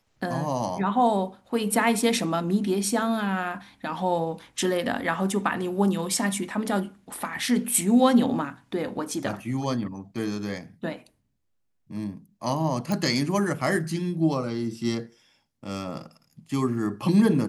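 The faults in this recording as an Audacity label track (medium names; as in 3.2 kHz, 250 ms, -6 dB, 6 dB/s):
12.920000	12.920000	pop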